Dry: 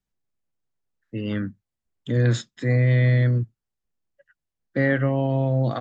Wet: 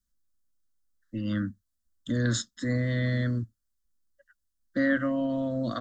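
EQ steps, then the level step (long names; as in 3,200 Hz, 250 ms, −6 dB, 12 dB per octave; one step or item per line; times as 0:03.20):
phaser with its sweep stopped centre 340 Hz, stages 4
phaser with its sweep stopped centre 1,000 Hz, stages 4
+6.5 dB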